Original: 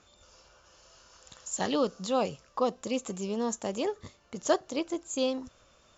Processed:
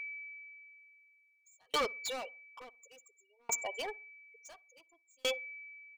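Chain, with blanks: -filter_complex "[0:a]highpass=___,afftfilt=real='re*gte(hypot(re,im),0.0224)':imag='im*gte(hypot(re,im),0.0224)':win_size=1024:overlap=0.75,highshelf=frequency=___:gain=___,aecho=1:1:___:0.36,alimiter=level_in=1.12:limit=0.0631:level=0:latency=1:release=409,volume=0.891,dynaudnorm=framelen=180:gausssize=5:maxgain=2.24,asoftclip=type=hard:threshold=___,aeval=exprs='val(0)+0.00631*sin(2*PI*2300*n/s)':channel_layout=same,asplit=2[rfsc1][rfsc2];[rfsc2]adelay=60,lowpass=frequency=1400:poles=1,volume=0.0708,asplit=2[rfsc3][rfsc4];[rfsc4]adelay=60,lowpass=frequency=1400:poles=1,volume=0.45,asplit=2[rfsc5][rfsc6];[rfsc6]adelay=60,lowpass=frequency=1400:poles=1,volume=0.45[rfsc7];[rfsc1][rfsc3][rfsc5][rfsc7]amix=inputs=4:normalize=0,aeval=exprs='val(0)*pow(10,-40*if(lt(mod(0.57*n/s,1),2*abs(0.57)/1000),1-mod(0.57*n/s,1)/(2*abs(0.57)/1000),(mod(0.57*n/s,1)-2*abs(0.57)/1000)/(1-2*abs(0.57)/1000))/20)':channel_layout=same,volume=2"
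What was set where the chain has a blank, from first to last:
940, 5300, 6.5, 4.2, 0.0211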